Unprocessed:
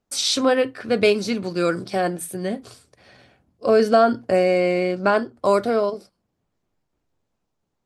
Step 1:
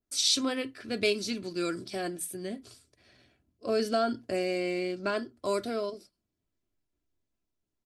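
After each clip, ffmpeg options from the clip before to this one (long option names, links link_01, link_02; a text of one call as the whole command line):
ffmpeg -i in.wav -af "equalizer=frequency=860:width_type=o:width=1.5:gain=-8.5,aecho=1:1:3:0.41,adynamicequalizer=threshold=0.0178:dfrequency=2400:dqfactor=0.7:tfrequency=2400:tqfactor=0.7:attack=5:release=100:ratio=0.375:range=2.5:mode=boostabove:tftype=highshelf,volume=-8.5dB" out.wav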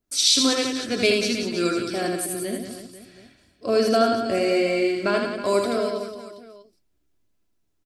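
ffmpeg -i in.wav -af "aecho=1:1:80|184|319.2|495|723.4:0.631|0.398|0.251|0.158|0.1,volume=6.5dB" out.wav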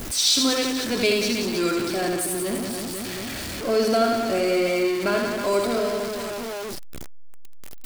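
ffmpeg -i in.wav -af "aeval=exprs='val(0)+0.5*0.0708*sgn(val(0))':channel_layout=same,volume=-3dB" out.wav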